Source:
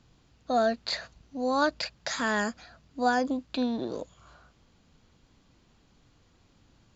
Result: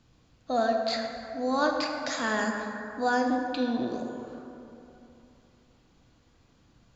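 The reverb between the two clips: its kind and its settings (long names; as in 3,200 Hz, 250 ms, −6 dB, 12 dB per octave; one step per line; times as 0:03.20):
dense smooth reverb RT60 3 s, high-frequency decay 0.4×, DRR 1.5 dB
level −2 dB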